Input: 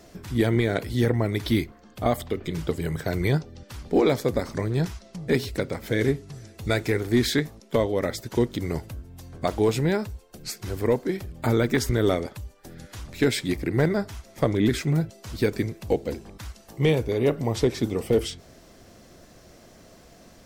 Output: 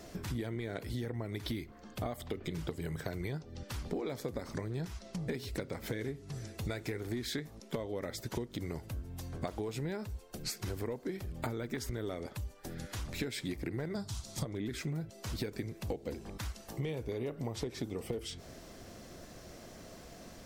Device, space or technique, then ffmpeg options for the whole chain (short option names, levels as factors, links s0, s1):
serial compression, leveller first: -filter_complex "[0:a]asettb=1/sr,asplit=3[s0][s1][s2];[s0]atrim=end=13.954[s3];[s1]atrim=start=13.95:end=14.45,asetpts=PTS-STARTPTS,afade=t=in:d=0.004:c=qsin,afade=t=out:st=0.496:d=0.004:c=qsin,equalizer=f=125:t=o:w=1:g=11,equalizer=f=500:t=o:w=1:g=-5,equalizer=f=1000:t=o:w=1:g=3,equalizer=f=2000:t=o:w=1:g=-8,equalizer=f=4000:t=o:w=1:g=9,equalizer=f=8000:t=o:w=1:g=9[s4];[s2]atrim=start=14.446[s5];[s3][s4]acrossfade=d=0.004:c1=hsin:c2=qsin[s6];[s6][s5]acrossfade=d=0.004:c1=qsin:c2=hsin,acompressor=threshold=0.0708:ratio=2.5,acompressor=threshold=0.0178:ratio=6"